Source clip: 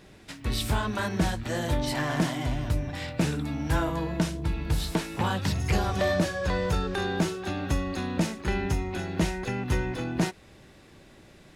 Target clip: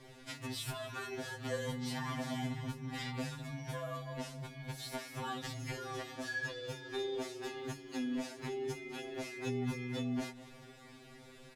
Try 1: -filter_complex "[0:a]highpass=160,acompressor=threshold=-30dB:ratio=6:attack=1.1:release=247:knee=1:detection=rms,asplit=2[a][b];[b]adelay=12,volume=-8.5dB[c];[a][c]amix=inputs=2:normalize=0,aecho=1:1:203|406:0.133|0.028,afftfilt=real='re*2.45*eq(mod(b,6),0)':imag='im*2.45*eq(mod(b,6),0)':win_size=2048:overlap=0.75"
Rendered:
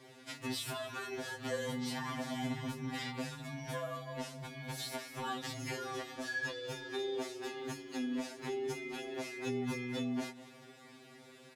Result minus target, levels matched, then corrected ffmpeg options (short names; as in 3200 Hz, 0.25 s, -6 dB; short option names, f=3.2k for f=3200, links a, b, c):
125 Hz band -4.0 dB
-filter_complex "[0:a]acompressor=threshold=-30dB:ratio=6:attack=1.1:release=247:knee=1:detection=rms,asplit=2[a][b];[b]adelay=12,volume=-8.5dB[c];[a][c]amix=inputs=2:normalize=0,aecho=1:1:203|406:0.133|0.028,afftfilt=real='re*2.45*eq(mod(b,6),0)':imag='im*2.45*eq(mod(b,6),0)':win_size=2048:overlap=0.75"